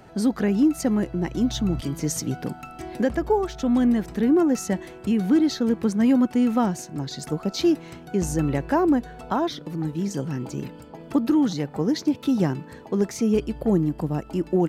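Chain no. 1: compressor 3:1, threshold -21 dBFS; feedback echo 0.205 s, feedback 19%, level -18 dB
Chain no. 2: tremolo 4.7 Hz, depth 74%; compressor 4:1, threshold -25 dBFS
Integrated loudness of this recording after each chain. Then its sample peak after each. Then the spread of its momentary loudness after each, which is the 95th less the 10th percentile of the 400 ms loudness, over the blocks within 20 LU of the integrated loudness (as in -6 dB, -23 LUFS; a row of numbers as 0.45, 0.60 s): -26.5, -31.5 LUFS; -12.0, -15.0 dBFS; 7, 7 LU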